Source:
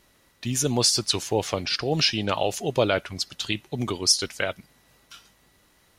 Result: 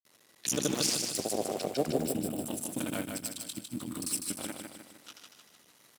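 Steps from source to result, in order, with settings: cycle switcher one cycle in 2, muted; time-frequency box 2.01–4.51 s, 340–7400 Hz -14 dB; high-pass 180 Hz 12 dB/octave; treble shelf 4.1 kHz +8 dB; peak limiter -15.5 dBFS, peak gain reduction 11.5 dB; granulator, pitch spread up and down by 0 st; time-frequency box 0.95–2.46 s, 810–7100 Hz -10 dB; on a send: feedback delay 153 ms, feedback 50%, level -5 dB

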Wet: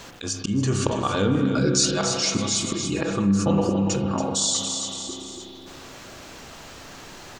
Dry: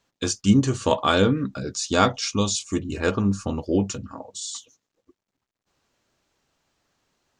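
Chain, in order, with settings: 1.60–4.04 s: comb 6 ms, depth 75%; slow attack 595 ms; feedback delay 282 ms, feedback 29%, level -11 dB; spring tank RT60 1.9 s, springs 30/41 ms, chirp 60 ms, DRR 4.5 dB; level flattener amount 50%; trim +4 dB

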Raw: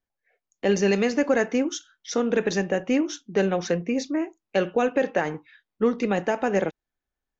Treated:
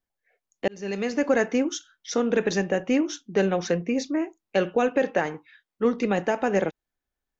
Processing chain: 0.68–1.31 s: fade in; 5.26–5.85 s: bass shelf 340 Hz -6 dB

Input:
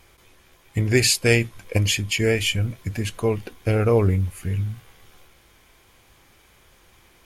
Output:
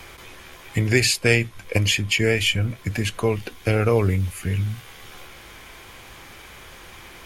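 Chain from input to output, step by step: peaking EQ 2.3 kHz +4 dB 2.8 oct; three bands compressed up and down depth 40%

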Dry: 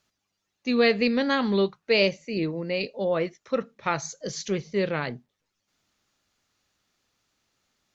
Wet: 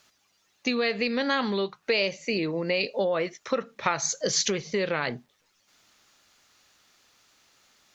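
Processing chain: in parallel at -1 dB: peak limiter -19 dBFS, peak gain reduction 9.5 dB; on the sum: compression 10:1, threshold -26 dBFS, peak gain reduction 13 dB; bass shelf 360 Hz -10 dB; trim +7 dB

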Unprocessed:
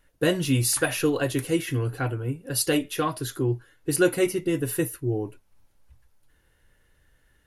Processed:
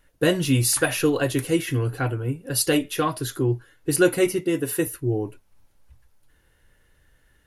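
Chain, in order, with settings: 4.41–4.87 s: high-pass 180 Hz; trim +2.5 dB

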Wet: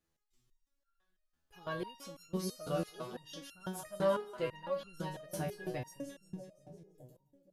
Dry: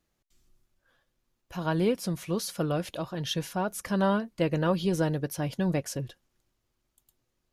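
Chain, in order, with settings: two-band feedback delay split 670 Hz, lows 621 ms, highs 171 ms, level -9.5 dB; resonator arpeggio 6 Hz 83–1400 Hz; trim +2.5 dB

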